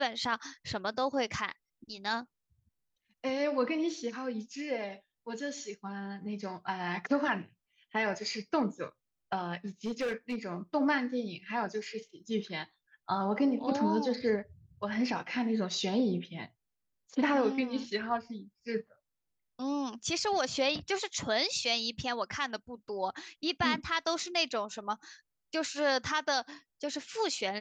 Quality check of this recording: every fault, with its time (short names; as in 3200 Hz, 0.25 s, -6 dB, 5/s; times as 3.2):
9.85–10.36 clipped -29 dBFS